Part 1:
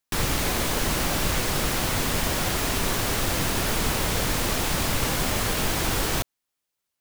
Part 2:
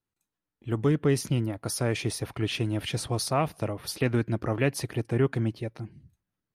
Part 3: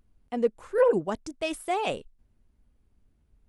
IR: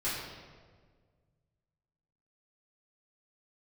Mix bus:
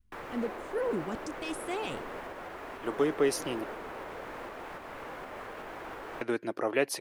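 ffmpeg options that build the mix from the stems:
-filter_complex "[0:a]acrossover=split=330 2100:gain=0.126 1 0.0631[a][b][c];[a][b][c]amix=inputs=3:normalize=0,alimiter=level_in=2dB:limit=-24dB:level=0:latency=1:release=337,volume=-2dB,volume=-7dB[d];[1:a]highpass=470,adelay=2150,volume=-0.5dB,asplit=3[e][f][g];[e]atrim=end=3.64,asetpts=PTS-STARTPTS,afade=t=out:st=3.636:d=0.004:c=hsin[h];[f]atrim=start=3.64:end=6.21,asetpts=PTS-STARTPTS,volume=0[i];[g]atrim=start=6.21,asetpts=PTS-STARTPTS,afade=t=in:d=0.004:c=hsin[j];[h][i][j]concat=n=3:v=0:a=1[k];[2:a]equalizer=f=640:t=o:w=1.2:g=-13,alimiter=level_in=2.5dB:limit=-24dB:level=0:latency=1:release=32,volume=-2.5dB,volume=-2.5dB[l];[d][k][l]amix=inputs=3:normalize=0,adynamicequalizer=threshold=0.00708:dfrequency=380:dqfactor=0.86:tfrequency=380:tqfactor=0.86:attack=5:release=100:ratio=0.375:range=2.5:mode=boostabove:tftype=bell"

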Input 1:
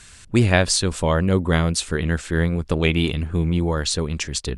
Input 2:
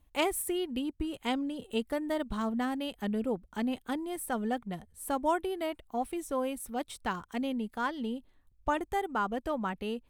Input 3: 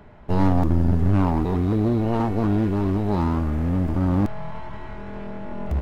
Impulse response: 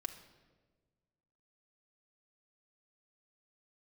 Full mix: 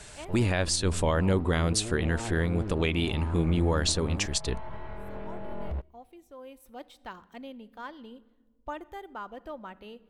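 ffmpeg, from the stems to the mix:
-filter_complex "[0:a]equalizer=f=150:w=1.9:g=-4,volume=-2.5dB,asplit=2[a][b];[1:a]equalizer=f=9.3k:w=3.4:g=-10.5,volume=-12dB,afade=t=in:st=6.37:d=0.31:silence=0.421697,asplit=2[c][d];[d]volume=-4dB[e];[2:a]lowpass=f=2.4k:p=1,alimiter=limit=-18dB:level=0:latency=1:release=492,volume=-5dB,asplit=2[f][g];[g]volume=-22.5dB[h];[b]apad=whole_len=445096[i];[c][i]sidechaincompress=threshold=-39dB:ratio=8:attack=16:release=1110[j];[j][f]amix=inputs=2:normalize=0,equalizer=f=250:t=o:w=1:g=-6,equalizer=f=500:t=o:w=1:g=4,equalizer=f=4k:t=o:w=1:g=4,equalizer=f=8k:t=o:w=1:g=-6,alimiter=level_in=3.5dB:limit=-24dB:level=0:latency=1:release=18,volume=-3.5dB,volume=0dB[k];[3:a]atrim=start_sample=2205[l];[e][h]amix=inputs=2:normalize=0[m];[m][l]afir=irnorm=-1:irlink=0[n];[a][k][n]amix=inputs=3:normalize=0,alimiter=limit=-15dB:level=0:latency=1:release=149"

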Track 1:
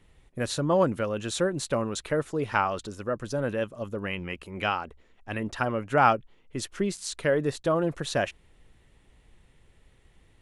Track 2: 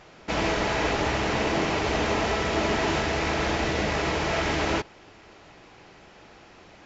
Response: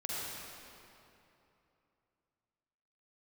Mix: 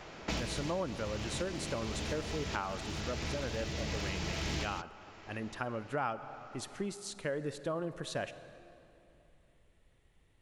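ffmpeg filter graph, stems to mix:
-filter_complex "[0:a]volume=-9.5dB,asplit=3[a][b][c];[b]volume=-16.5dB[d];[1:a]aeval=exprs='clip(val(0),-1,0.0841)':c=same,acrossover=split=230|3000[e][f][g];[f]acompressor=threshold=-38dB:ratio=6[h];[e][h][g]amix=inputs=3:normalize=0,volume=1.5dB[i];[c]apad=whole_len=302406[j];[i][j]sidechaincompress=threshold=-40dB:ratio=6:attack=11:release=1110[k];[2:a]atrim=start_sample=2205[l];[d][l]afir=irnorm=-1:irlink=0[m];[a][k][m]amix=inputs=3:normalize=0,acompressor=threshold=-32dB:ratio=3"

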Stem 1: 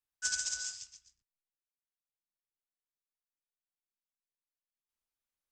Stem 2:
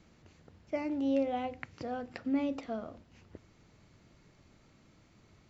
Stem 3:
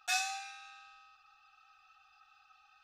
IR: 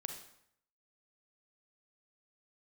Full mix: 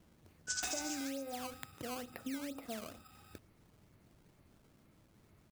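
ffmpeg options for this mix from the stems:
-filter_complex "[0:a]adelay=250,volume=-5dB[a];[1:a]aemphasis=mode=reproduction:type=75kf,acrusher=samples=14:mix=1:aa=0.000001:lfo=1:lforange=22.4:lforate=2.2,volume=-3.5dB[b];[2:a]bandreject=f=2.7k:w=12,acompressor=threshold=-41dB:ratio=6,acrusher=samples=7:mix=1:aa=0.000001,adelay=550,volume=1.5dB[c];[b][c]amix=inputs=2:normalize=0,highshelf=f=4.9k:g=6,acompressor=threshold=-38dB:ratio=12,volume=0dB[d];[a][d]amix=inputs=2:normalize=0"

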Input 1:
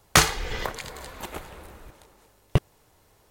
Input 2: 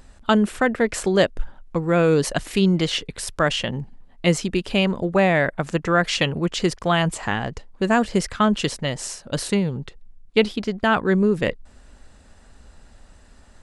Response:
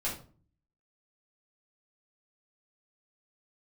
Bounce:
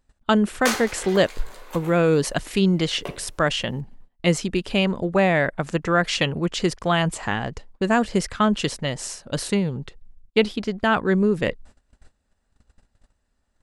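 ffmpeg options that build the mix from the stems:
-filter_complex "[0:a]highpass=f=310:w=0.5412,highpass=f=310:w=1.3066,adelay=500,volume=-2dB,asplit=3[a][b][c];[b]volume=-10.5dB[d];[c]volume=-24dB[e];[1:a]volume=-1dB,asplit=2[f][g];[g]apad=whole_len=167966[h];[a][h]sidechaincompress=threshold=-24dB:ratio=8:attack=7.2:release=808[i];[2:a]atrim=start_sample=2205[j];[d][j]afir=irnorm=-1:irlink=0[k];[e]aecho=0:1:215|430|645|860|1075|1290|1505|1720:1|0.52|0.27|0.141|0.0731|0.038|0.0198|0.0103[l];[i][f][k][l]amix=inputs=4:normalize=0,agate=range=-21dB:threshold=-43dB:ratio=16:detection=peak"

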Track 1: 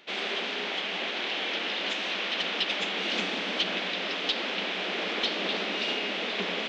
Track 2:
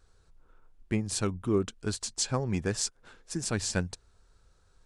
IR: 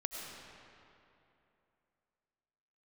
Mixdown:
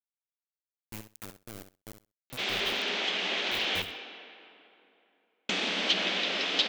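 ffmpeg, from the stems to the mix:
-filter_complex "[0:a]adelay=2300,volume=-5dB,asplit=3[a][b][c];[a]atrim=end=3.82,asetpts=PTS-STARTPTS,afade=t=out:st=3.816:d=0.004:c=hsin[d];[b]atrim=start=3.82:end=5.49,asetpts=PTS-STARTPTS,volume=0[e];[c]atrim=start=5.49,asetpts=PTS-STARTPTS,afade=t=in:d=0.004:c=hsin[f];[d][e][f]concat=n=3:v=0:a=1,asplit=2[g][h];[h]volume=-3.5dB[i];[1:a]acrossover=split=160[j][k];[k]acompressor=threshold=-50dB:ratio=2.5[l];[j][l]amix=inputs=2:normalize=0,acrusher=bits=4:mix=0:aa=0.000001,volume=-12dB,asplit=2[m][n];[n]volume=-10dB[o];[2:a]atrim=start_sample=2205[p];[i][p]afir=irnorm=-1:irlink=0[q];[o]aecho=0:1:65|130|195:1|0.16|0.0256[r];[g][m][q][r]amix=inputs=4:normalize=0,aemphasis=mode=production:type=50kf"

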